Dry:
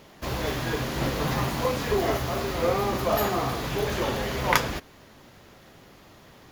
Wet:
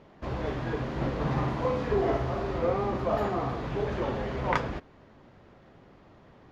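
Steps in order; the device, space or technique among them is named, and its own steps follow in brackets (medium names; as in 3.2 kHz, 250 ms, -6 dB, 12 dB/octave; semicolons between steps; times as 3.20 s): through cloth (low-pass 6.4 kHz 12 dB/octave; treble shelf 2.8 kHz -18 dB); 1.16–2.59 s: flutter echo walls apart 9.2 m, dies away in 0.48 s; trim -2 dB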